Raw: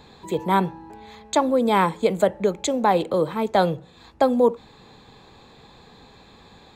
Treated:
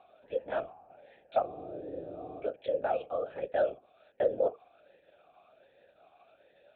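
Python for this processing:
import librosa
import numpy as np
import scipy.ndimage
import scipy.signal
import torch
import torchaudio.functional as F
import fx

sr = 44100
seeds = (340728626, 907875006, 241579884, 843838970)

y = fx.lpc_vocoder(x, sr, seeds[0], excitation='whisper', order=8)
y = fx.spec_freeze(y, sr, seeds[1], at_s=1.49, hold_s=0.91)
y = fx.vowel_sweep(y, sr, vowels='a-e', hz=1.3)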